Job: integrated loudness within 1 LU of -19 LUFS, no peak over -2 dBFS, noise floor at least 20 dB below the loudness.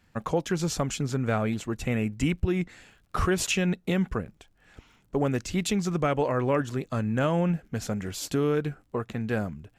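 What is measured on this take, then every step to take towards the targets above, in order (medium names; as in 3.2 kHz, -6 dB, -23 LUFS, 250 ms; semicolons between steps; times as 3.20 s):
tick rate 33 per s; loudness -28.0 LUFS; peak level -15.0 dBFS; loudness target -19.0 LUFS
-> de-click; trim +9 dB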